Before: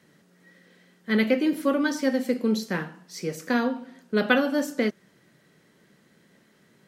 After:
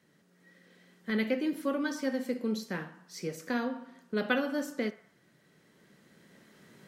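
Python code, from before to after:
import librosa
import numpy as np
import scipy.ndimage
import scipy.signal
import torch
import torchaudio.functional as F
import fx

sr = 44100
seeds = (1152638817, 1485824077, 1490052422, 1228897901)

p1 = fx.recorder_agc(x, sr, target_db=-17.0, rise_db_per_s=6.1, max_gain_db=30)
p2 = p1 + fx.echo_banded(p1, sr, ms=62, feedback_pct=65, hz=1200.0, wet_db=-14.0, dry=0)
y = p2 * 10.0 ** (-8.0 / 20.0)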